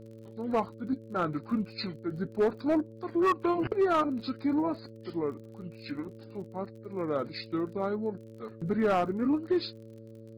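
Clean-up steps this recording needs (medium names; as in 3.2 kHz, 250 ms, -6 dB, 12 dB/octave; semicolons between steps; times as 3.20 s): clip repair -20 dBFS; de-click; de-hum 111.9 Hz, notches 5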